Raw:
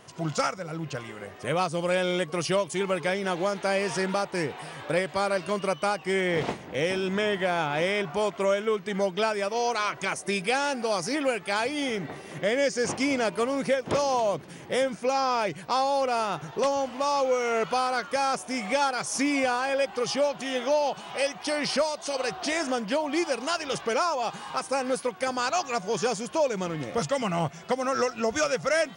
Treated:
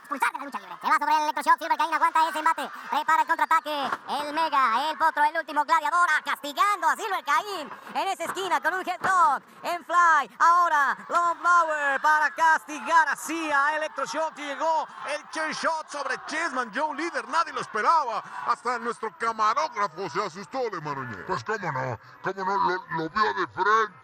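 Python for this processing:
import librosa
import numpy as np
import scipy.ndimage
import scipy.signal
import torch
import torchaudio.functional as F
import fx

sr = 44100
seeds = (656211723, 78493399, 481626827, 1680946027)

y = fx.speed_glide(x, sr, from_pct=174, to_pct=67)
y = fx.transient(y, sr, attack_db=-1, sustain_db=-6)
y = fx.band_shelf(y, sr, hz=1300.0, db=13.5, octaves=1.2)
y = F.gain(torch.from_numpy(y), -5.0).numpy()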